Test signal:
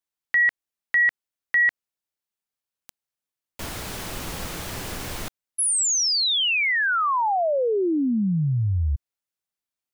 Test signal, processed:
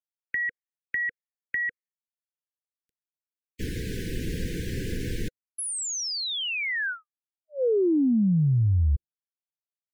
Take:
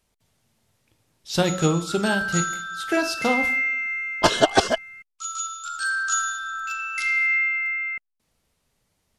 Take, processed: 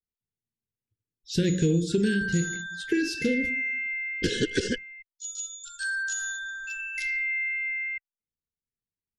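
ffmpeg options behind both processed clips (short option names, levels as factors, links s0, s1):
-af "asuperstop=centerf=880:order=20:qfactor=0.86,adynamicequalizer=threshold=0.0178:dfrequency=6100:dqfactor=0.79:tfrequency=6100:tqfactor=0.79:attack=5:release=100:ratio=0.375:range=1.5:mode=boostabove:tftype=bell,afftdn=nr=31:nf=-44,acompressor=threshold=0.0501:ratio=5:attack=12:release=59:knee=6:detection=peak,asoftclip=type=hard:threshold=0.188,tiltshelf=f=1300:g=5.5"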